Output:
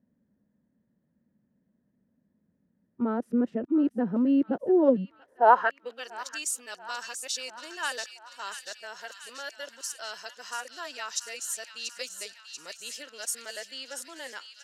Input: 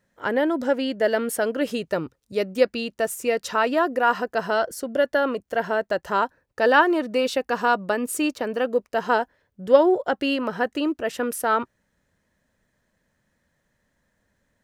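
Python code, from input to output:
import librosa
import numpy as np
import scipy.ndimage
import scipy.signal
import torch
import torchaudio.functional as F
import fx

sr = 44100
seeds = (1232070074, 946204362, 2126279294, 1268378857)

y = np.flip(x).copy()
y = fx.filter_sweep_bandpass(y, sr, from_hz=220.0, to_hz=6400.0, start_s=5.1, end_s=6.1, q=2.4)
y = fx.echo_wet_highpass(y, sr, ms=686, feedback_pct=63, hz=2000.0, wet_db=-8)
y = y * librosa.db_to_amplitude(6.5)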